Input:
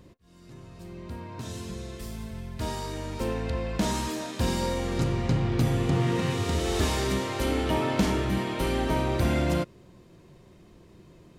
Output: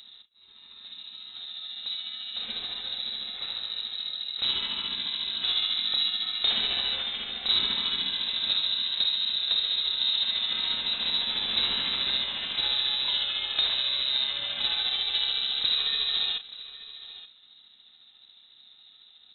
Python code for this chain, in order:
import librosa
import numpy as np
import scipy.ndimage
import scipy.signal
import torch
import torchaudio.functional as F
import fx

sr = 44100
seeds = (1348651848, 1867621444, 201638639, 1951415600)

y = fx.rider(x, sr, range_db=3, speed_s=0.5)
y = fx.stretch_grains(y, sr, factor=1.7, grain_ms=143.0)
y = y + 10.0 ** (-16.5 / 20.0) * np.pad(y, (int(877 * sr / 1000.0), 0))[:len(y)]
y = np.repeat(y[::6], 6)[:len(y)]
y = fx.freq_invert(y, sr, carrier_hz=3900)